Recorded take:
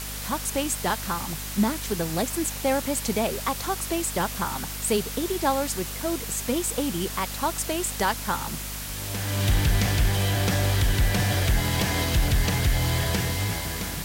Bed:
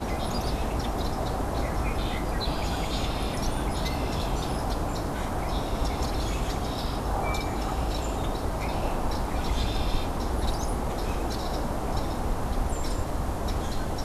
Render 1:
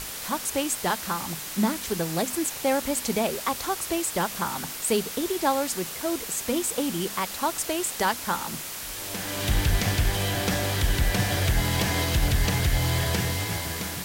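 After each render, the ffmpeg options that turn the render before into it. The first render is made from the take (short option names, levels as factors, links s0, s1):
-af "bandreject=f=50:t=h:w=6,bandreject=f=100:t=h:w=6,bandreject=f=150:t=h:w=6,bandreject=f=200:t=h:w=6,bandreject=f=250:t=h:w=6"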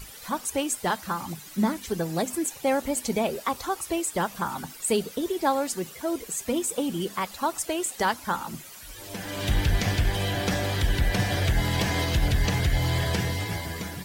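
-af "afftdn=nr=13:nf=-36"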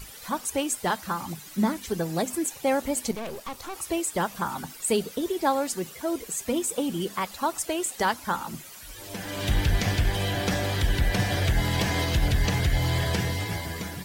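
-filter_complex "[0:a]asettb=1/sr,asplit=3[s0][s1][s2];[s0]atrim=end=3.114[s3];[s1]atrim=start=3.11:end=3.75,asetpts=PTS-STARTPTS,afade=t=in:d=0.004:c=qsin,afade=t=out:st=0.636:d=0.004:c=qsin,aeval=exprs='(tanh(39.8*val(0)+0.7)-tanh(0.7))/39.8':c=same[s4];[s2]atrim=start=3.746[s5];[s3][s4]acrossfade=d=0.004:c1=hsin:c2=qsin[s6];[s6][s5]acrossfade=d=0.004:c1=qsin:c2=hsin"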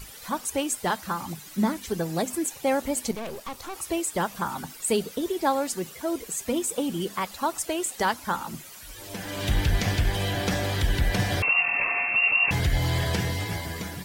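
-filter_complex "[0:a]asettb=1/sr,asplit=3[s0][s1][s2];[s0]atrim=end=11.424[s3];[s1]atrim=start=11.42:end=12.51,asetpts=PTS-STARTPTS,afade=t=in:d=0.004:c=qsin,afade=t=out:st=1.086:d=0.004:c=qsin,lowpass=f=2400:t=q:w=0.5098,lowpass=f=2400:t=q:w=0.6013,lowpass=f=2400:t=q:w=0.9,lowpass=f=2400:t=q:w=2.563,afreqshift=-2800[s4];[s2]atrim=start=12.506[s5];[s3][s4]acrossfade=d=0.004:c1=hsin:c2=qsin[s6];[s6][s5]acrossfade=d=0.004:c1=qsin:c2=hsin"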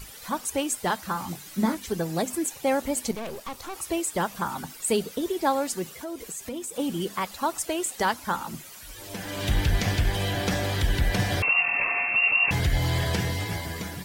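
-filter_complex "[0:a]asettb=1/sr,asplit=3[s0][s1][s2];[s0]atrim=end=1.134[s3];[s1]atrim=start=1.13:end=1.75,asetpts=PTS-STARTPTS,afade=t=in:d=0.004:c=qsin,afade=t=out:st=0.616:d=0.004:c=qsin,asplit=2[s4][s5];[s5]adelay=22,volume=0.447[s6];[s4][s6]amix=inputs=2:normalize=0,atrim=end_sample=27342[s7];[s2]atrim=start=1.746[s8];[s3][s7]acrossfade=d=0.004:c1=hsin:c2=qsin[s9];[s9][s8]acrossfade=d=0.004:c1=qsin:c2=hsin,asplit=3[s10][s11][s12];[s10]afade=t=out:st=5.99:d=0.02[s13];[s11]acompressor=threshold=0.02:ratio=2.5:attack=3.2:release=140:knee=1:detection=peak,afade=t=in:st=5.99:d=0.02,afade=t=out:st=6.78:d=0.02[s14];[s12]afade=t=in:st=6.78:d=0.02[s15];[s13][s14][s15]amix=inputs=3:normalize=0"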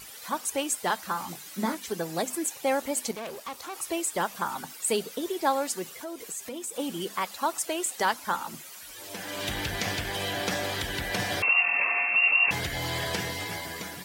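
-af "highpass=f=400:p=1"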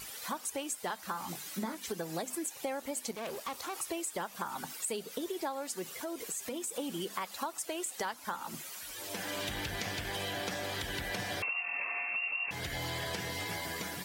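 -af "acompressor=threshold=0.02:ratio=6"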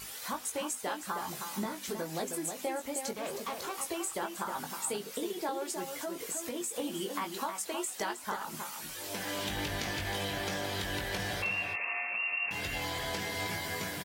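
-filter_complex "[0:a]asplit=2[s0][s1];[s1]adelay=20,volume=0.531[s2];[s0][s2]amix=inputs=2:normalize=0,asplit=2[s3][s4];[s4]adelay=314.9,volume=0.501,highshelf=f=4000:g=-7.08[s5];[s3][s5]amix=inputs=2:normalize=0"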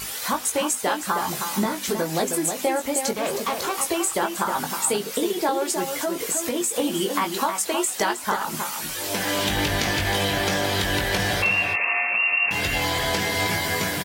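-af "volume=3.98"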